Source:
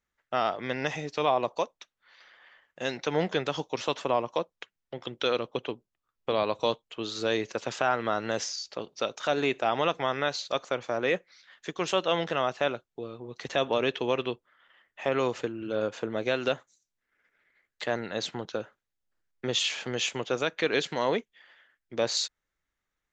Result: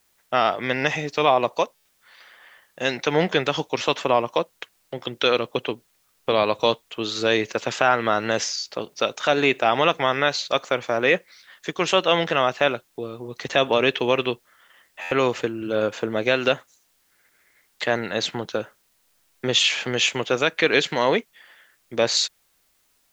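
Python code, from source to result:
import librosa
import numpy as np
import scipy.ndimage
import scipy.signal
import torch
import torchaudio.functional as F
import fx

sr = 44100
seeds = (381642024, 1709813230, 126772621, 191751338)

y = fx.dynamic_eq(x, sr, hz=2300.0, q=1.1, threshold_db=-43.0, ratio=4.0, max_db=4)
y = fx.quant_dither(y, sr, seeds[0], bits=12, dither='triangular')
y = fx.buffer_glitch(y, sr, at_s=(1.75, 15.01), block=512, repeats=8)
y = y * librosa.db_to_amplitude(6.5)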